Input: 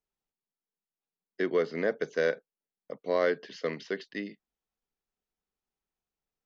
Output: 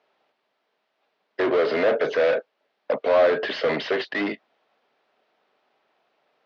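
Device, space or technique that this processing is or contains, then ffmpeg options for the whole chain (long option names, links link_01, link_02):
overdrive pedal into a guitar cabinet: -filter_complex "[0:a]asplit=2[link_01][link_02];[link_02]highpass=frequency=720:poles=1,volume=36dB,asoftclip=type=tanh:threshold=-15dB[link_03];[link_01][link_03]amix=inputs=2:normalize=0,lowpass=frequency=1800:poles=1,volume=-6dB,highpass=99,highpass=83,equalizer=frequency=95:width_type=q:width=4:gain=-9,equalizer=frequency=180:width_type=q:width=4:gain=-8,equalizer=frequency=620:width_type=q:width=4:gain=9,lowpass=frequency=4400:width=0.5412,lowpass=frequency=4400:width=1.3066"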